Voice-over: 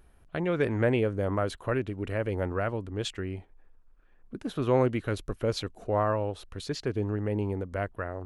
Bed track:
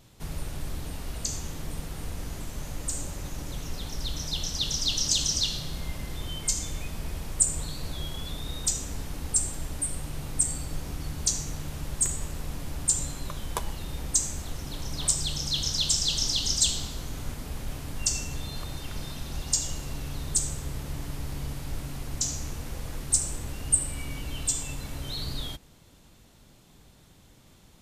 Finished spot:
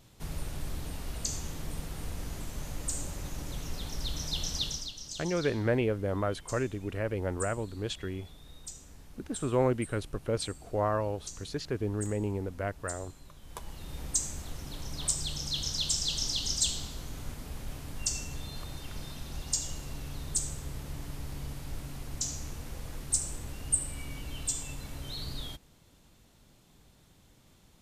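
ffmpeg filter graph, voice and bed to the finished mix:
-filter_complex "[0:a]adelay=4850,volume=0.75[s0];[1:a]volume=2.99,afade=t=out:st=4.56:d=0.36:silence=0.188365,afade=t=in:st=13.41:d=0.62:silence=0.251189[s1];[s0][s1]amix=inputs=2:normalize=0"

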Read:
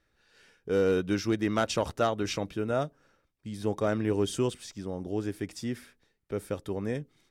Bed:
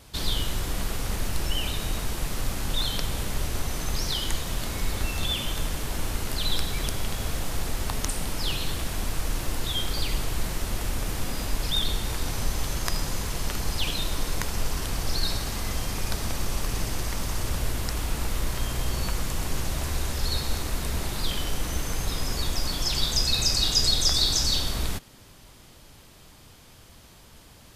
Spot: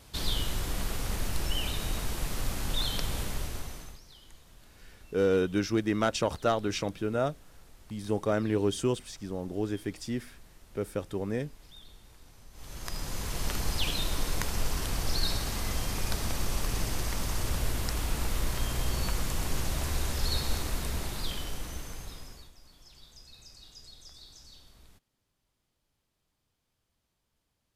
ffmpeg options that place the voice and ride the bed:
-filter_complex "[0:a]adelay=4450,volume=1[s0];[1:a]volume=10,afade=t=out:st=3.19:d=0.81:silence=0.0749894,afade=t=in:st=12.52:d=0.97:silence=0.0668344,afade=t=out:st=20.53:d=1.99:silence=0.0473151[s1];[s0][s1]amix=inputs=2:normalize=0"

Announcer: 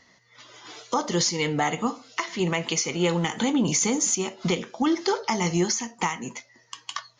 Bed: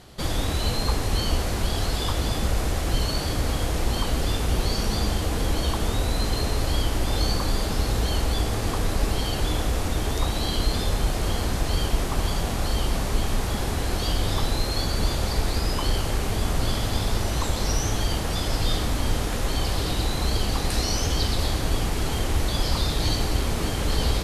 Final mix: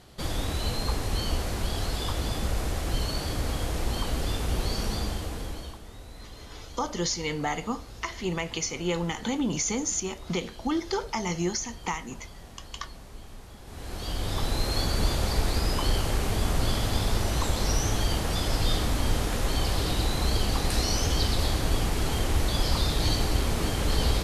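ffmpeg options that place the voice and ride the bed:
-filter_complex "[0:a]adelay=5850,volume=0.562[s0];[1:a]volume=5.31,afade=t=out:st=4.86:d=0.96:silence=0.158489,afade=t=in:st=13.64:d=1.11:silence=0.112202[s1];[s0][s1]amix=inputs=2:normalize=0"

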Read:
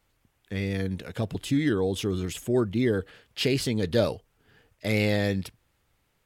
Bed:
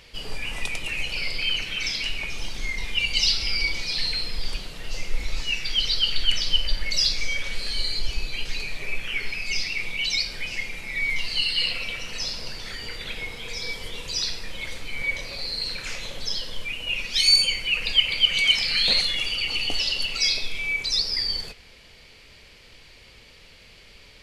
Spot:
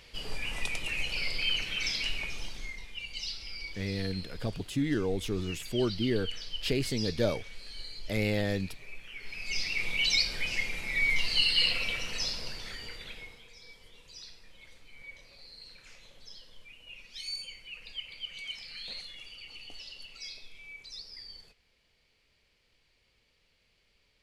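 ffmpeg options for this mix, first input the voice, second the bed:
-filter_complex "[0:a]adelay=3250,volume=0.562[s0];[1:a]volume=3.35,afade=t=out:st=2.14:d=0.73:silence=0.251189,afade=t=in:st=9.19:d=0.76:silence=0.177828,afade=t=out:st=11.92:d=1.58:silence=0.105925[s1];[s0][s1]amix=inputs=2:normalize=0"

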